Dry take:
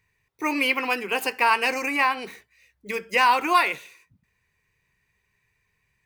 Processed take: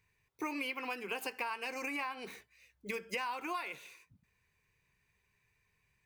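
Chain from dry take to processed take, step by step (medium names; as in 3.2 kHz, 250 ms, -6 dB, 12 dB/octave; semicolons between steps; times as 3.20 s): band-stop 1.9 kHz, Q 16; compression 12:1, threshold -31 dBFS, peak gain reduction 17.5 dB; trim -4 dB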